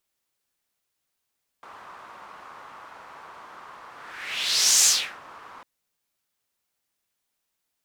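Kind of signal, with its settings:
pass-by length 4.00 s, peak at 0:03.22, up 0.99 s, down 0.36 s, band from 1,100 Hz, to 6,700 Hz, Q 2.8, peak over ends 27.5 dB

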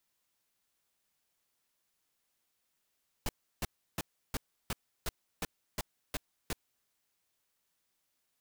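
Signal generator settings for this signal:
noise bursts pink, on 0.03 s, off 0.33 s, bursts 10, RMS −34 dBFS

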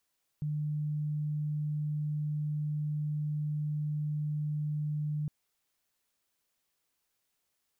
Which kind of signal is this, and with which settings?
tone sine 150 Hz −30 dBFS 4.86 s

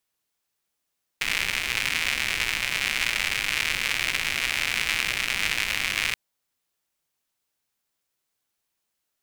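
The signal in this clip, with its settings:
rain-like ticks over hiss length 4.93 s, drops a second 160, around 2,300 Hz, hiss −13 dB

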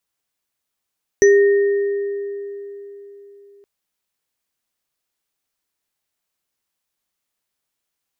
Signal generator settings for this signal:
inharmonic partials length 2.42 s, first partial 402 Hz, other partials 1,850/5,960 Hz, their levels −11.5/−9.5 dB, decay 3.72 s, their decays 2.18/0.21 s, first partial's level −7 dB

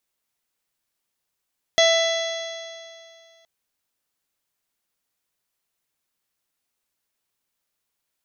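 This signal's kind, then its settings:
stiff-string partials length 1.67 s, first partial 659 Hz, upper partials −16.5/−5.5/−19/−3/−11.5/−16.5/−14/−11 dB, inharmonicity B 0.0018, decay 2.38 s, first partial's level −15 dB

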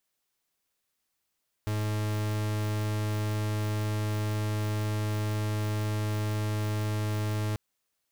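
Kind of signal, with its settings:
pulse wave 106 Hz, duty 43% −29.5 dBFS 5.89 s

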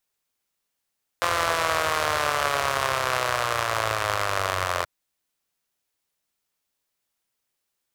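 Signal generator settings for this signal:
pulse-train model of a four-cylinder engine, changing speed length 3.63 s, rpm 5,200, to 2,600, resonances 96/630/1,100 Hz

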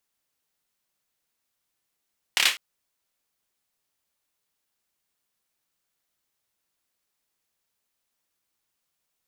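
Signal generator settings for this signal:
synth clap length 0.20 s, apart 28 ms, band 2,500 Hz, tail 0.26 s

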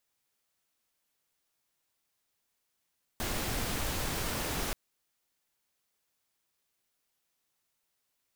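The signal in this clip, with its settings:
noise pink, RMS −33.5 dBFS 1.53 s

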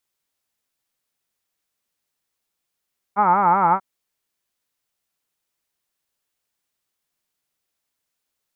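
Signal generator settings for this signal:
vowel from formants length 0.64 s, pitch 194 Hz, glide −1.5 semitones, vibrato depth 1.5 semitones, F1 870 Hz, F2 1,300 Hz, F3 2,200 Hz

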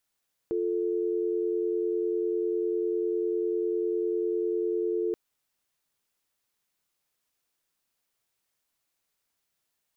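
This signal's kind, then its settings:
call progress tone dial tone, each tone −28 dBFS 4.63 s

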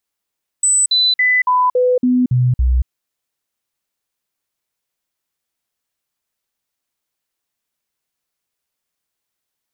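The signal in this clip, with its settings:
stepped sweep 8,000 Hz down, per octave 1, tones 8, 0.23 s, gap 0.05 s −10.5 dBFS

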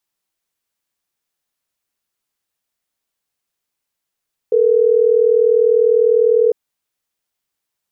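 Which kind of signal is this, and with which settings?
call progress tone ringback tone, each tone −12.5 dBFS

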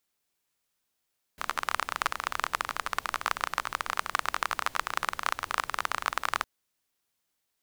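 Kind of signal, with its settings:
rain-like ticks over hiss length 5.06 s, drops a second 25, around 1,200 Hz, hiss −18 dB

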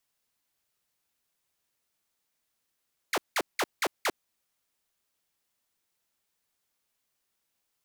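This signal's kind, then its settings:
repeated falling chirps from 2,500 Hz, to 270 Hz, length 0.05 s saw, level −21.5 dB, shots 5, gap 0.18 s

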